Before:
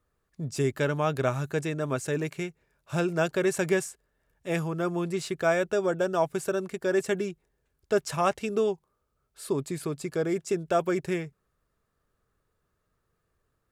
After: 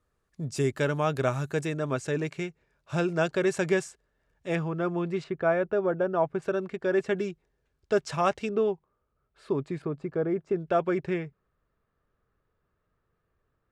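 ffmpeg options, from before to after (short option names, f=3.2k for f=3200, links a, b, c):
-af "asetnsamples=n=441:p=0,asendcmd='1.77 lowpass f 6400;4.55 lowpass f 3100;5.24 lowpass f 1700;6.42 lowpass f 3200;7.17 lowpass f 5800;8.49 lowpass f 2500;9.82 lowpass f 1400;10.56 lowpass f 2900',lowpass=11k"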